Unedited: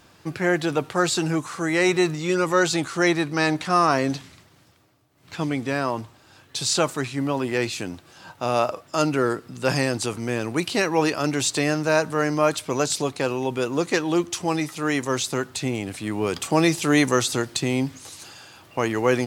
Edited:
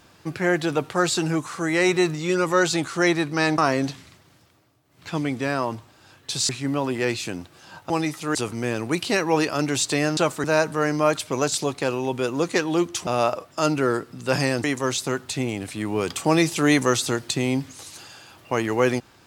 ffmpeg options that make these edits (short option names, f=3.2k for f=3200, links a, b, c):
-filter_complex "[0:a]asplit=9[a][b][c][d][e][f][g][h][i];[a]atrim=end=3.582[j];[b]atrim=start=3.838:end=6.752[k];[c]atrim=start=7.018:end=8.432[l];[d]atrim=start=14.448:end=14.902[m];[e]atrim=start=9.998:end=11.822[n];[f]atrim=start=6.748:end=7.022[o];[g]atrim=start=11.818:end=14.452[p];[h]atrim=start=8.428:end=10.002[q];[i]atrim=start=14.898[r];[j][k]acrossfade=d=0.004:c1=hsin:c2=hsin[s];[s][l]acrossfade=d=0.004:c1=hsin:c2=hsin[t];[t][m]acrossfade=d=0.004:c1=hsin:c2=hsin[u];[u][n]acrossfade=d=0.004:c1=hsin:c2=hsin[v];[v][o]acrossfade=d=0.004:c1=hsin:c2=hsin[w];[w][p]acrossfade=d=0.004:c1=hsin:c2=hsin[x];[x][q]acrossfade=d=0.004:c1=hsin:c2=hsin[y];[y][r]acrossfade=d=0.004:c1=hsin:c2=hsin"